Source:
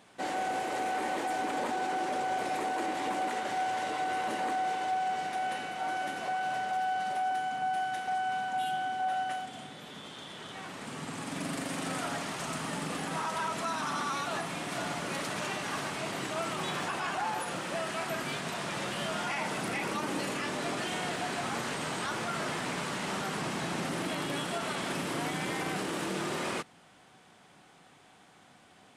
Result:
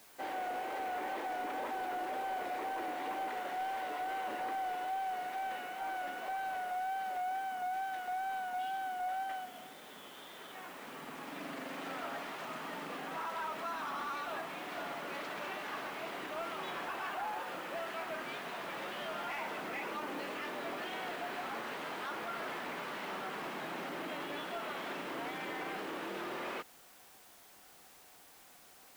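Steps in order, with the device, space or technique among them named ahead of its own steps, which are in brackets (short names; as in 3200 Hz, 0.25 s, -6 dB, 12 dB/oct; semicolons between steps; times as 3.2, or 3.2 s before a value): tape answering machine (BPF 310–3100 Hz; soft clip -26.5 dBFS, distortion -21 dB; wow and flutter; white noise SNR 20 dB); gain -4 dB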